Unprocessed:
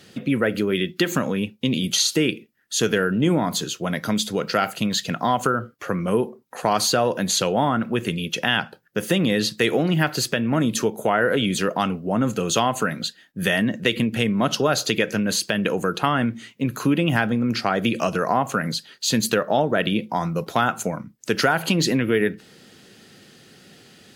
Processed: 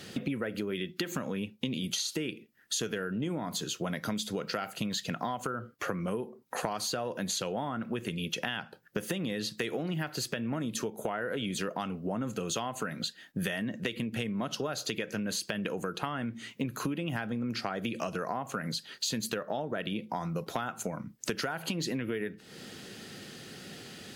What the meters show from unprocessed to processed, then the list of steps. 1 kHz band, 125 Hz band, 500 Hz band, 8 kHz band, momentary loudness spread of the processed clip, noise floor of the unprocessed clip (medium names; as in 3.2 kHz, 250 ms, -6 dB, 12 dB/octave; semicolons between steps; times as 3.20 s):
-13.5 dB, -12.0 dB, -13.0 dB, -10.5 dB, 6 LU, -53 dBFS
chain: compression 8:1, threshold -34 dBFS, peak gain reduction 19.5 dB; trim +3 dB